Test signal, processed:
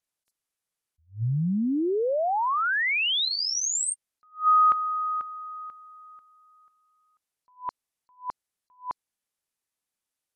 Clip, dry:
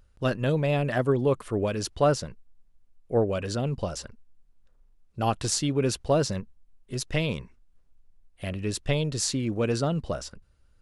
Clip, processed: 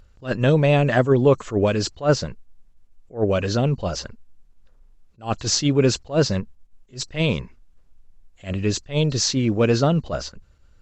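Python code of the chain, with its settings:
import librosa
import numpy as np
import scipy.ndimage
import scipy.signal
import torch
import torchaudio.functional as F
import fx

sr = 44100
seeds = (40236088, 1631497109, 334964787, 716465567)

y = fx.freq_compress(x, sr, knee_hz=4000.0, ratio=1.5)
y = fx.attack_slew(y, sr, db_per_s=240.0)
y = F.gain(torch.from_numpy(y), 8.0).numpy()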